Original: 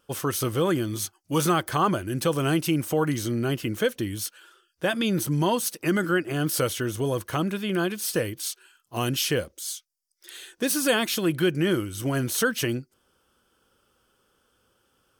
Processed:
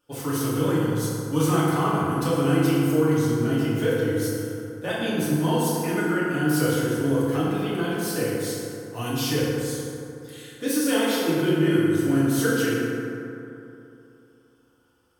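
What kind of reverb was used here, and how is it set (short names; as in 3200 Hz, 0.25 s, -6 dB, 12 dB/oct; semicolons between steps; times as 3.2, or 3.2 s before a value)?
FDN reverb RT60 2.9 s, high-frequency decay 0.4×, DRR -9.5 dB; gain -9.5 dB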